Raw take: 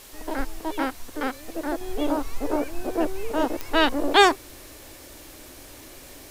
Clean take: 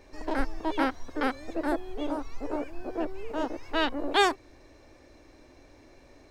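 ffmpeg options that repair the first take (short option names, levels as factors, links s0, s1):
-af "adeclick=t=4,afwtdn=0.005,asetnsamples=n=441:p=0,asendcmd='1.81 volume volume -7dB',volume=1"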